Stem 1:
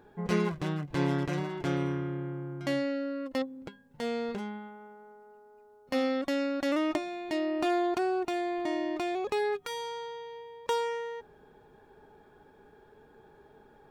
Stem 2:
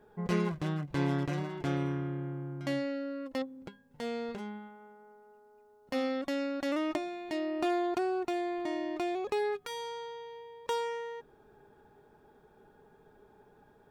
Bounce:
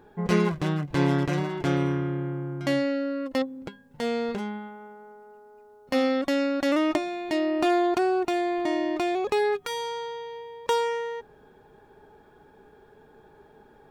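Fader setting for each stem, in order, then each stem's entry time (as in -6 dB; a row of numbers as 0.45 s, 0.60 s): +2.5 dB, -3.0 dB; 0.00 s, 0.00 s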